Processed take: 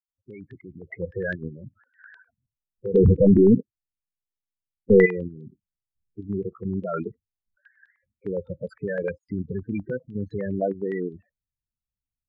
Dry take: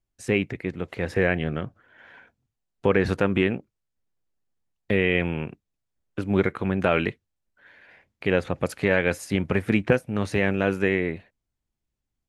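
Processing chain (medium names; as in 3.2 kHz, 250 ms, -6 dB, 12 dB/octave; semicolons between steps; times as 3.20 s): fade-in on the opening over 0.82 s; 2.94–5.06 s: waveshaping leveller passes 5; level held to a coarse grid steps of 13 dB; loudest bins only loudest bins 8; step-sequenced low-pass 9.8 Hz 730–3700 Hz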